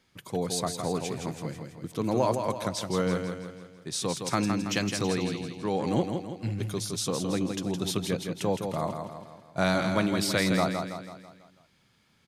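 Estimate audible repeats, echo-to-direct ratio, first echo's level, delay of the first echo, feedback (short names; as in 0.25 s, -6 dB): 5, -5.0 dB, -6.0 dB, 0.164 s, 49%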